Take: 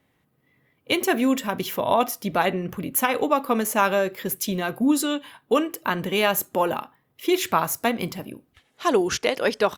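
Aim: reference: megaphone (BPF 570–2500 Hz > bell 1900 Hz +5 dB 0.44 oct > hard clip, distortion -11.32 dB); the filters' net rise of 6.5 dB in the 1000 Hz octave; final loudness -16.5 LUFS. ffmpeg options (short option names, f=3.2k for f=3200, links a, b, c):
-af "highpass=570,lowpass=2.5k,equalizer=f=1k:t=o:g=8.5,equalizer=f=1.9k:t=o:w=0.44:g=5,asoftclip=type=hard:threshold=-11.5dB,volume=7dB"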